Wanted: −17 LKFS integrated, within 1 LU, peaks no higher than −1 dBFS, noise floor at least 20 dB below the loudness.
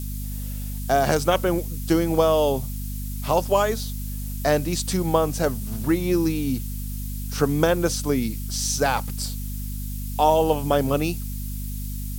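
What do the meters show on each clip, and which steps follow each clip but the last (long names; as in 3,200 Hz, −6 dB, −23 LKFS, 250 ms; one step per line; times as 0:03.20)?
mains hum 50 Hz; hum harmonics up to 250 Hz; level of the hum −28 dBFS; background noise floor −30 dBFS; target noise floor −44 dBFS; integrated loudness −24.0 LKFS; sample peak −5.0 dBFS; target loudness −17.0 LKFS
→ hum removal 50 Hz, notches 5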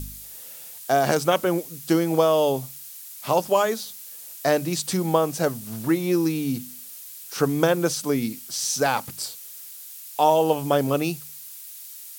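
mains hum none found; background noise floor −41 dBFS; target noise floor −44 dBFS
→ broadband denoise 6 dB, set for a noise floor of −41 dBFS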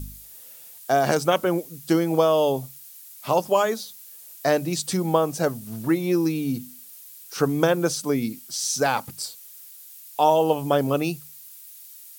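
background noise floor −45 dBFS; integrated loudness −23.5 LKFS; sample peak −5.0 dBFS; target loudness −17.0 LKFS
→ level +6.5 dB
brickwall limiter −1 dBFS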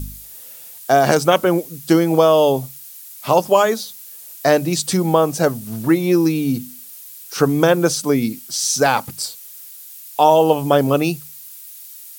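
integrated loudness −17.0 LKFS; sample peak −1.0 dBFS; background noise floor −39 dBFS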